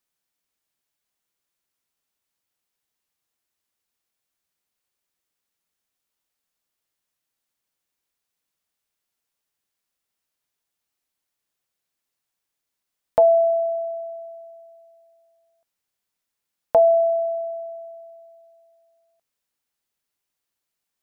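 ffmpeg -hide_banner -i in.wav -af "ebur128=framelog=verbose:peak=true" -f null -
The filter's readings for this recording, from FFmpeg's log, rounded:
Integrated loudness:
  I:         -20.2 LUFS
  Threshold: -33.8 LUFS
Loudness range:
  LRA:         9.7 LU
  Threshold: -45.5 LUFS
  LRA low:   -34.0 LUFS
  LRA high:  -24.3 LUFS
True peak:
  Peak:       -8.6 dBFS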